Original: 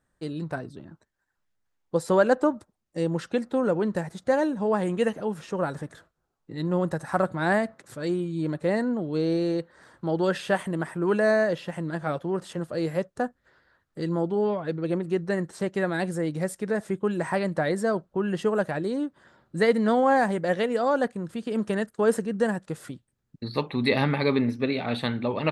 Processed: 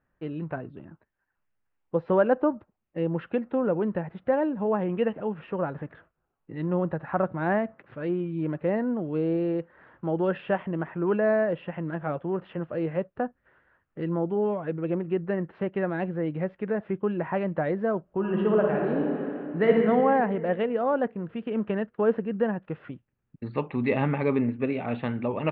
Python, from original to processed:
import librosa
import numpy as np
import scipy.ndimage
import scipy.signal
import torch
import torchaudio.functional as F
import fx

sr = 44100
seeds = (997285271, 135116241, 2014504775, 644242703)

y = fx.reverb_throw(x, sr, start_s=18.03, length_s=1.72, rt60_s=2.4, drr_db=-1.0)
y = fx.dynamic_eq(y, sr, hz=2000.0, q=0.76, threshold_db=-38.0, ratio=4.0, max_db=-5)
y = scipy.signal.sosfilt(scipy.signal.ellip(4, 1.0, 70, 2800.0, 'lowpass', fs=sr, output='sos'), y)